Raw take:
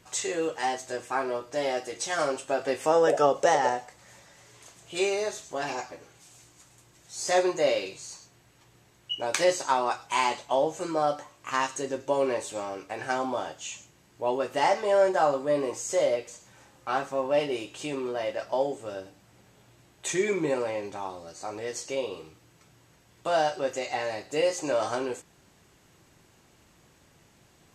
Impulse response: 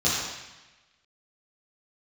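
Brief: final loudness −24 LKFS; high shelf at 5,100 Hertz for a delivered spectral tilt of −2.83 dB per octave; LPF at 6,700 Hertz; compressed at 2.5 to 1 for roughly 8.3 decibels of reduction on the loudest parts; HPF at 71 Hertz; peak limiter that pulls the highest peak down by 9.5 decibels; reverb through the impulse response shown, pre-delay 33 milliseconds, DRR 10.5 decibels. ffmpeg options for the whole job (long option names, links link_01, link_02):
-filter_complex "[0:a]highpass=71,lowpass=6700,highshelf=frequency=5100:gain=3.5,acompressor=threshold=-29dB:ratio=2.5,alimiter=limit=-21.5dB:level=0:latency=1,asplit=2[link_01][link_02];[1:a]atrim=start_sample=2205,adelay=33[link_03];[link_02][link_03]afir=irnorm=-1:irlink=0,volume=-24.5dB[link_04];[link_01][link_04]amix=inputs=2:normalize=0,volume=9.5dB"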